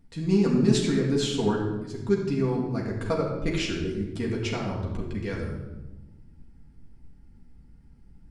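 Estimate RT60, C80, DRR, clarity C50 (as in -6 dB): 1.1 s, 6.0 dB, -3.0 dB, 3.5 dB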